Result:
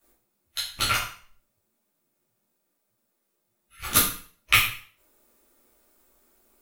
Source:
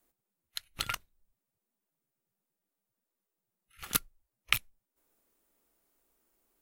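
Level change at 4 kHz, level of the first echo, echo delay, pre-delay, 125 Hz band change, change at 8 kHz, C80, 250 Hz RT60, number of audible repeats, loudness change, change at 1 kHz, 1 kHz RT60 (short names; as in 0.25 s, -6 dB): +10.5 dB, none, none, 5 ms, +12.5 dB, +11.5 dB, 9.0 dB, 0.45 s, none, +10.5 dB, +12.5 dB, 0.45 s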